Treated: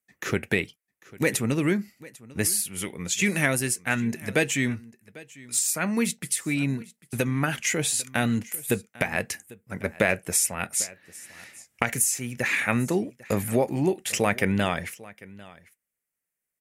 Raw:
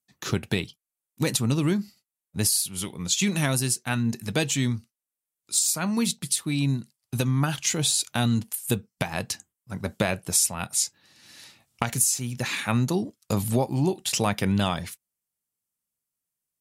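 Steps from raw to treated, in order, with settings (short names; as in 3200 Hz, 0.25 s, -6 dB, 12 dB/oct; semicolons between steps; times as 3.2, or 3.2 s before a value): ten-band EQ 125 Hz -5 dB, 500 Hz +5 dB, 1000 Hz -5 dB, 2000 Hz +12 dB, 4000 Hz -10 dB; on a send: echo 0.797 s -21 dB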